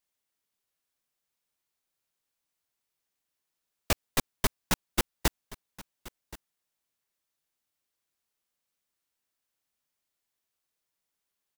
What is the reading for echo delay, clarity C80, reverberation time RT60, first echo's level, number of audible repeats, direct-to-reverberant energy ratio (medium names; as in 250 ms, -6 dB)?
1075 ms, no reverb, no reverb, -19.0 dB, 1, no reverb